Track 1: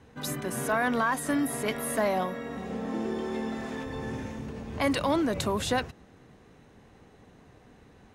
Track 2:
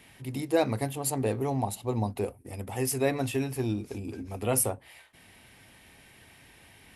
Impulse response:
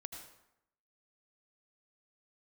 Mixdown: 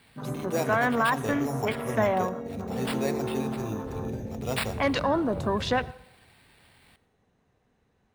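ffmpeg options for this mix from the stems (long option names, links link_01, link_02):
-filter_complex "[0:a]afwtdn=0.0158,volume=1dB,asplit=2[link_01][link_02];[link_02]volume=-10.5dB[link_03];[1:a]acrusher=samples=7:mix=1:aa=0.000001,volume=-6dB,asplit=2[link_04][link_05];[link_05]volume=-6dB[link_06];[2:a]atrim=start_sample=2205[link_07];[link_03][link_06]amix=inputs=2:normalize=0[link_08];[link_08][link_07]afir=irnorm=-1:irlink=0[link_09];[link_01][link_04][link_09]amix=inputs=3:normalize=0,equalizer=frequency=300:width=3.9:gain=-4.5"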